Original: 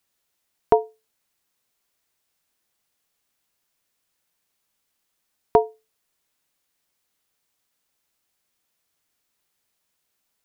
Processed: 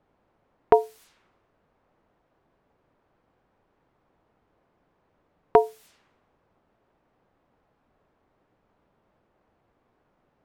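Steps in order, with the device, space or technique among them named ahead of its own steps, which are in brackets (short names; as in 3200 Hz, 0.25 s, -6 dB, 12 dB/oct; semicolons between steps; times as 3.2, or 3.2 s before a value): cassette deck with a dynamic noise filter (white noise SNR 23 dB; low-pass opened by the level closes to 710 Hz, open at -27 dBFS)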